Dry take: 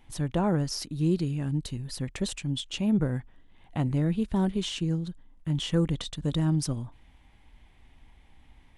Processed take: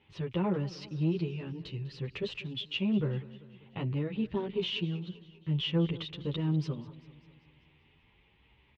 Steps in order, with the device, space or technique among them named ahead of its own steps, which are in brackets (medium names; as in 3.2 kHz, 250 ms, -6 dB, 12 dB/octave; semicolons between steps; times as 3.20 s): barber-pole flanger into a guitar amplifier (endless flanger 9.7 ms +0.89 Hz; saturation -18.5 dBFS, distortion -20 dB; cabinet simulation 89–3900 Hz, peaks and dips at 270 Hz -8 dB, 410 Hz +7 dB, 710 Hz -9 dB, 1.6 kHz -4 dB, 2.7 kHz +8 dB); modulated delay 196 ms, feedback 57%, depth 99 cents, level -18.5 dB